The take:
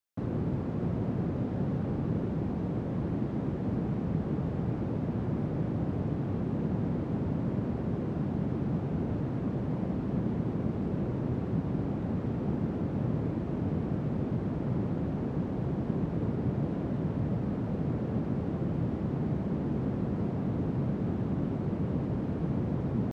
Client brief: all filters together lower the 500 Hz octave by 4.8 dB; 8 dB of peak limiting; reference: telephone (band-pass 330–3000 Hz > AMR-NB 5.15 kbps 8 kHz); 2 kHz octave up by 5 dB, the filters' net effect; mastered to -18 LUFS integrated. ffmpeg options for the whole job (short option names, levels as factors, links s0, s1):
-af "equalizer=f=500:t=o:g=-5,equalizer=f=2000:t=o:g=7.5,alimiter=level_in=1.12:limit=0.0631:level=0:latency=1,volume=0.891,highpass=330,lowpass=3000,volume=21.1" -ar 8000 -c:a libopencore_amrnb -b:a 5150